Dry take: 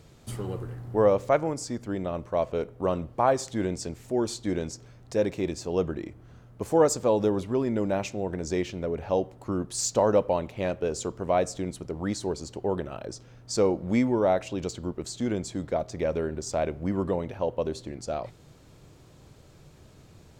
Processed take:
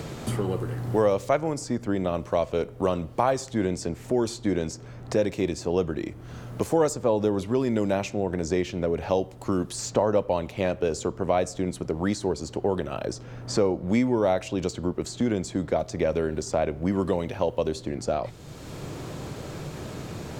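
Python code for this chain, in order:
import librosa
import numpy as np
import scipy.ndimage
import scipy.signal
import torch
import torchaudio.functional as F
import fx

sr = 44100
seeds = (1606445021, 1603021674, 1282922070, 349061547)

y = fx.band_squash(x, sr, depth_pct=70)
y = F.gain(torch.from_numpy(y), 2.0).numpy()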